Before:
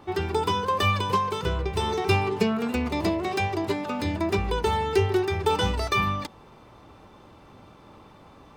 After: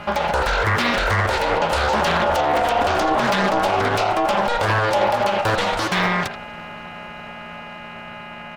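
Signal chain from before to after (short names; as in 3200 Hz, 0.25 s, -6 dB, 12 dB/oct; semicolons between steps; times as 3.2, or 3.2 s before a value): Doppler pass-by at 2.9, 9 m/s, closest 10 m; HPF 150 Hz 12 dB/oct; notches 60/120/180/240/300/360/420/480/540 Hz; in parallel at +2.5 dB: compressor, threshold -44 dBFS, peak gain reduction 21.5 dB; on the sum: buzz 400 Hz, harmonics 6, -52 dBFS -1 dB/oct; frequency shift -260 Hz; ring modulator 710 Hz; speakerphone echo 80 ms, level -8 dB; maximiser +26 dB; Doppler distortion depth 0.69 ms; gain -8.5 dB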